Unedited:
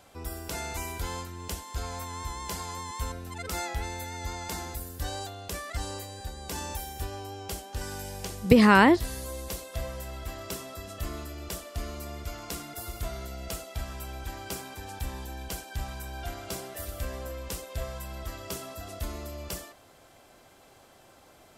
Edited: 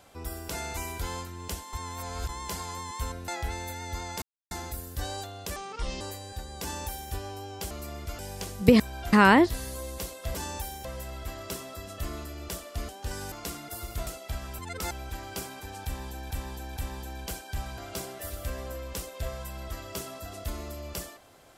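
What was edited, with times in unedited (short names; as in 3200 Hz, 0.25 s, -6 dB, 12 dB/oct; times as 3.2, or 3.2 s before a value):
1.73–2.29 reverse
3.28–3.6 move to 14.05
4.54 insert silence 0.29 s
5.59–5.89 speed 67%
6.5–7 copy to 9.85
7.59–8.02 swap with 11.89–12.37
13.12–13.53 cut
14.99–15.45 loop, 3 plays
16–16.33 move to 8.63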